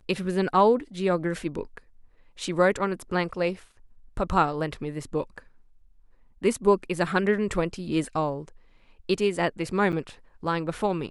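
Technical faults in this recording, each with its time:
9.92–9.93 gap 8.3 ms

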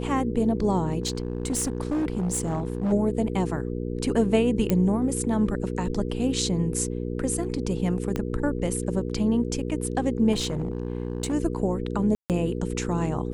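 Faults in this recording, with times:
hum 60 Hz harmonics 8 -30 dBFS
1.02–2.93 clipped -22 dBFS
4.7 pop -9 dBFS
8.16 pop -14 dBFS
10.32–11.34 clipped -22.5 dBFS
12.15–12.3 gap 0.148 s

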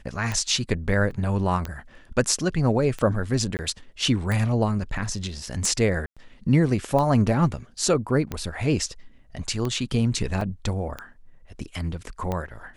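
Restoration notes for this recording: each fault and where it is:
tick 45 rpm -15 dBFS
1.11 gap 2.1 ms
3.57–3.59 gap 19 ms
6.06–6.17 gap 0.106 s
10.41 gap 3.4 ms

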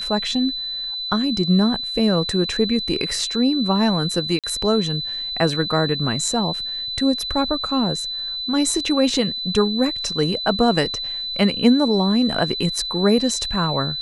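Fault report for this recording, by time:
tone 4000 Hz -25 dBFS
4.39–4.44 gap 47 ms

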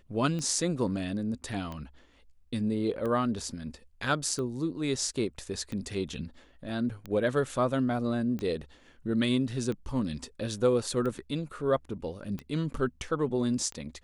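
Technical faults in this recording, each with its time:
tick 45 rpm -24 dBFS

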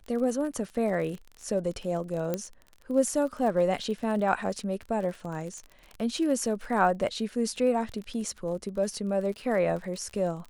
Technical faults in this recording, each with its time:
crackle 38/s -35 dBFS
2.34 pop -15 dBFS

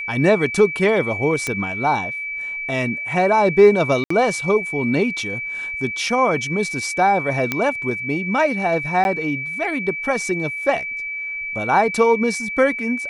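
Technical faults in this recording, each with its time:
tone 2300 Hz -25 dBFS
1.47 pop -9 dBFS
4.04–4.1 gap 64 ms
7.52 pop -6 dBFS
9.04–9.05 gap 11 ms

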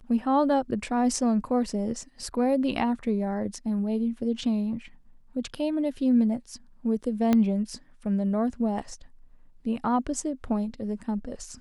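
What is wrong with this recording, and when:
7.33 pop -11 dBFS

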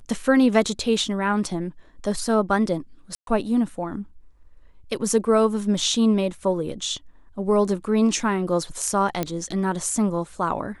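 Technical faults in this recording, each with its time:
3.15–3.27 gap 0.122 s
9.23 pop -10 dBFS

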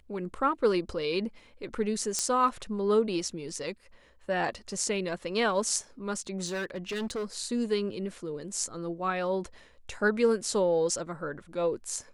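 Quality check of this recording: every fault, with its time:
2.19 pop -13 dBFS
6.46–7.37 clipped -29.5 dBFS

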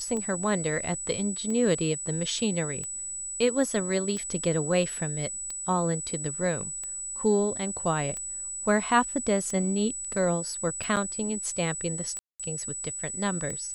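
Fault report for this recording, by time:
tick 45 rpm -24 dBFS
tone 7900 Hz -33 dBFS
10.96–10.97 gap 7.4 ms
12.19–12.4 gap 0.206 s

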